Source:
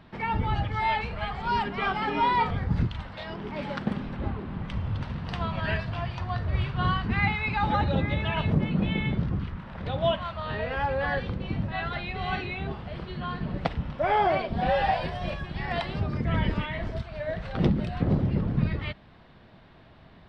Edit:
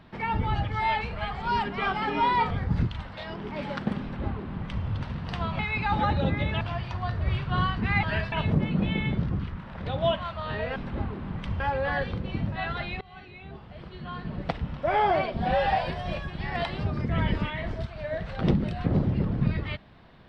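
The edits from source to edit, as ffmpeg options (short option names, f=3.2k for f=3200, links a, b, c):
-filter_complex "[0:a]asplit=8[a][b][c][d][e][f][g][h];[a]atrim=end=5.592[i];[b]atrim=start=7.298:end=8.322[j];[c]atrim=start=5.878:end=7.302[k];[d]atrim=start=5.588:end=5.882[l];[e]atrim=start=8.318:end=10.762[m];[f]atrim=start=4.018:end=4.862[n];[g]atrim=start=10.758:end=12.17,asetpts=PTS-STARTPTS,afade=t=out:st=1.408:d=0.004:c=hsin:silence=0.0707946[o];[h]atrim=start=12.17,asetpts=PTS-STARTPTS,afade=t=in:d=1.84:silence=0.0707946[p];[i][j]acrossfade=d=0.004:c1=hsin:c2=hsin[q];[q][k]acrossfade=d=0.004:c1=hsin:c2=hsin[r];[r][l]acrossfade=d=0.004:c1=hsin:c2=hsin[s];[s][m]acrossfade=d=0.004:c1=hsin:c2=hsin[t];[t][n]acrossfade=d=0.004:c1=hsin:c2=hsin[u];[o][p]concat=n=2:v=0:a=1[v];[u][v]acrossfade=d=0.004:c1=hsin:c2=hsin"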